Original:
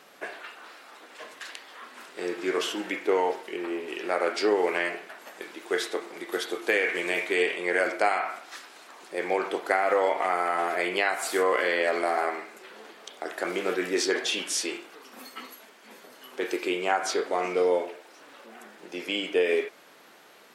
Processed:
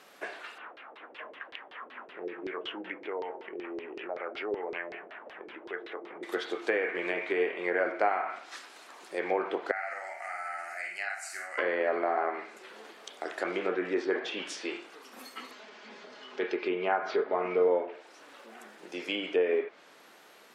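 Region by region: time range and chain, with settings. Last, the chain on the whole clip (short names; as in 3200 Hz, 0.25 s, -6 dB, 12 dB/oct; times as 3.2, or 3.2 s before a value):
0.58–6.23 band shelf 5700 Hz -13 dB 1.3 oct + compressor 2:1, threshold -41 dBFS + LFO low-pass saw down 5.3 Hz 380–4800 Hz
9.71–11.58 passive tone stack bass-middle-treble 10-0-10 + fixed phaser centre 690 Hz, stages 8 + doubler 50 ms -4 dB
15.51–17.68 LPF 5600 Hz 24 dB/oct + comb 4.8 ms, depth 42% + upward compressor, threshold -40 dBFS
whole clip: treble ducked by the level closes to 1600 Hz, closed at -23 dBFS; low shelf 110 Hz -7 dB; gain -2 dB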